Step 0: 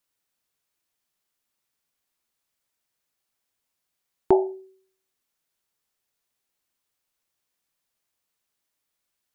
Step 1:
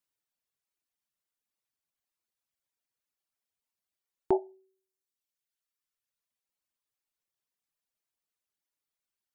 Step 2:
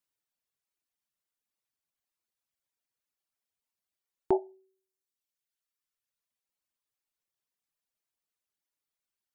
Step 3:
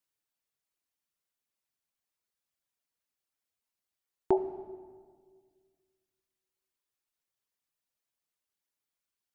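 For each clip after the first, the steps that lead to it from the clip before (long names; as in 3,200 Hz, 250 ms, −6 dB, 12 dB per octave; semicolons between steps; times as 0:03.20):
reverb reduction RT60 1.5 s; level −7.5 dB
no processing that can be heard
convolution reverb RT60 1.8 s, pre-delay 62 ms, DRR 11 dB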